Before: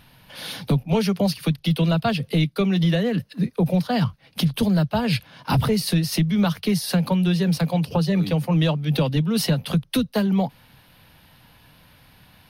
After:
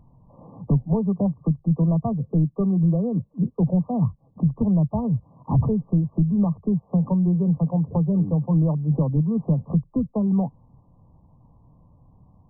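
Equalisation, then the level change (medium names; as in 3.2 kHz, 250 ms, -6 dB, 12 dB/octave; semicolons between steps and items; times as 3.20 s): brick-wall FIR low-pass 1.2 kHz; bass shelf 280 Hz +11 dB; -7.5 dB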